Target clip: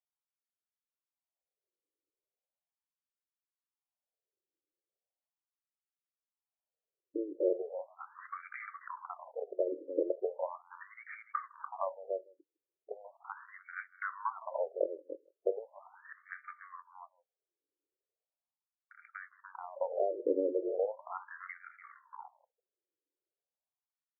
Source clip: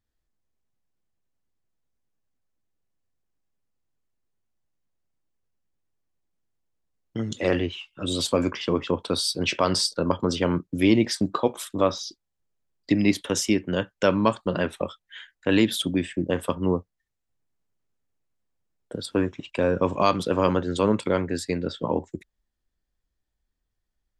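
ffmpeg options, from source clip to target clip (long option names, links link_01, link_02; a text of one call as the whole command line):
ffmpeg -i in.wav -filter_complex "[0:a]lowshelf=frequency=320:gain=5,asplit=2[link_01][link_02];[link_02]aecho=0:1:291:0.224[link_03];[link_01][link_03]amix=inputs=2:normalize=0,adynamicsmooth=sensitivity=6.5:basefreq=820,asplit=2[link_04][link_05];[link_05]adelay=157.4,volume=-25dB,highshelf=frequency=4000:gain=-3.54[link_06];[link_04][link_06]amix=inputs=2:normalize=0,acompressor=threshold=-22dB:ratio=6,afftfilt=real='re*between(b*sr/1024,410*pow(1700/410,0.5+0.5*sin(2*PI*0.38*pts/sr))/1.41,410*pow(1700/410,0.5+0.5*sin(2*PI*0.38*pts/sr))*1.41)':imag='im*between(b*sr/1024,410*pow(1700/410,0.5+0.5*sin(2*PI*0.38*pts/sr))/1.41,410*pow(1700/410,0.5+0.5*sin(2*PI*0.38*pts/sr))*1.41)':win_size=1024:overlap=0.75,volume=-1.5dB" out.wav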